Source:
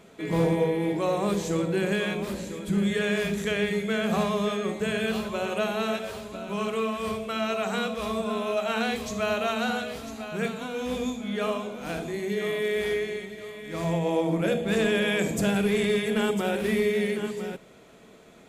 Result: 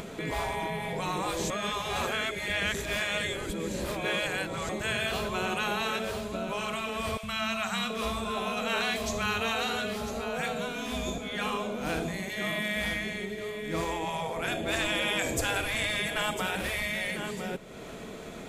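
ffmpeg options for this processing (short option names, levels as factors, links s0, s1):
-filter_complex "[0:a]asettb=1/sr,asplit=3[s0][s1][s2];[s0]atrim=end=7.174[s3];[s1]atrim=start=7.17:end=11.18,asetpts=PTS-STARTPTS,afade=t=in:d=0.004:c=qsin,afade=t=out:st=4.006:d=0.004:c=qsin,acrossover=split=210|810[s4][s5][s6];[s4]adelay=60[s7];[s5]adelay=730[s8];[s7][s8][s6]amix=inputs=3:normalize=0,atrim=end_sample=176841[s9];[s2]atrim=start=11.176[s10];[s3][s9]acrossfade=d=0.004:c1=hsin:c2=qsin[s11];[s11][s10]acrossfade=d=0.004:c1=qsin:c2=hsin,asplit=3[s12][s13][s14];[s12]atrim=end=1.502[s15];[s13]atrim=start=1.498:end=4.692,asetpts=PTS-STARTPTS,areverse[s16];[s14]atrim=start=4.688[s17];[s15][s16]acrossfade=d=0.004:c1=hsin:c2=hsin[s18];[s18][s17]acrossfade=d=0.004:c1=hsin:c2=hsin,afftfilt=real='re*lt(hypot(re,im),0.178)':imag='im*lt(hypot(re,im),0.178)':win_size=1024:overlap=0.75,lowshelf=f=74:g=7.5,acompressor=mode=upward:threshold=0.0178:ratio=2.5,volume=1.33"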